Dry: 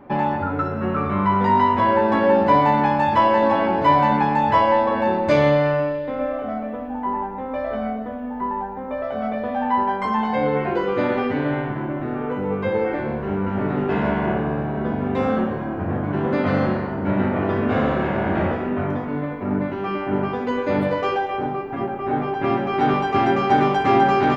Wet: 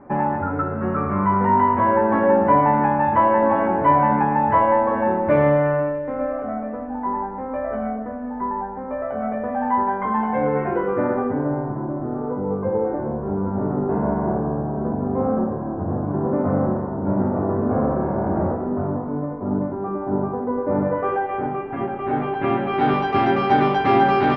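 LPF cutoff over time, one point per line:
LPF 24 dB/oct
10.77 s 1900 Hz
11.55 s 1100 Hz
20.63 s 1100 Hz
21.3 s 2100 Hz
22.01 s 3400 Hz
22.6 s 3400 Hz
23 s 5000 Hz

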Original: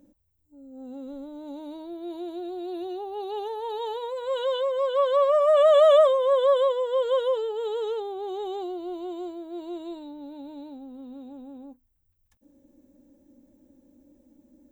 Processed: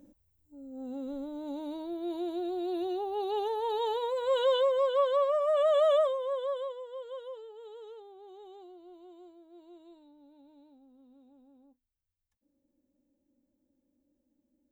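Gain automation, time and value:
4.62 s +0.5 dB
5.39 s -8 dB
5.92 s -8 dB
7.05 s -18 dB

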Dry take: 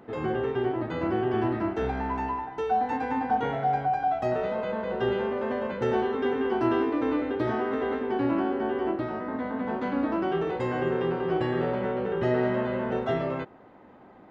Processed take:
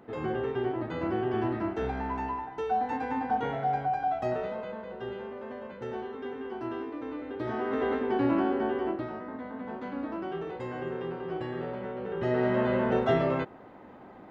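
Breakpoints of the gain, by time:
4.3 s -3 dB
4.96 s -11 dB
7.17 s -11 dB
7.82 s 0 dB
8.58 s 0 dB
9.4 s -8 dB
11.95 s -8 dB
12.7 s +2.5 dB

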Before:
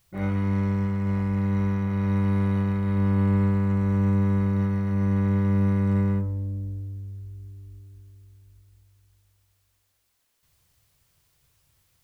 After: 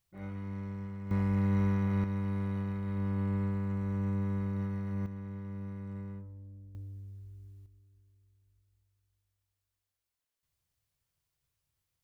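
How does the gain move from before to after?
-15 dB
from 1.11 s -4 dB
from 2.04 s -10.5 dB
from 5.06 s -19 dB
from 6.75 s -9.5 dB
from 7.66 s -17 dB

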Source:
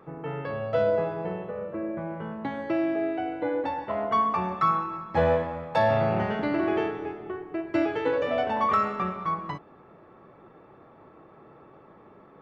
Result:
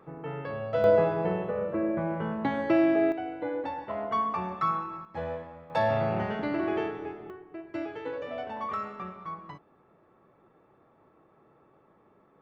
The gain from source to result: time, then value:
-3 dB
from 0.84 s +3.5 dB
from 3.12 s -4.5 dB
from 5.05 s -12.5 dB
from 5.7 s -3.5 dB
from 7.3 s -10 dB

